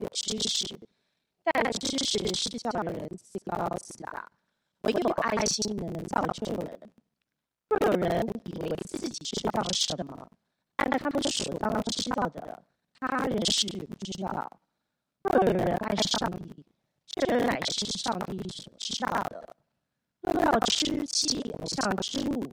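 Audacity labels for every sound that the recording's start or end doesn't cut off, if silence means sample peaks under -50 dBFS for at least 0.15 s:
1.460000	4.280000	sound
4.840000	6.980000	sound
7.710000	10.330000	sound
10.790000	12.610000	sound
12.960000	14.550000	sound
15.250000	16.620000	sound
17.090000	19.520000	sound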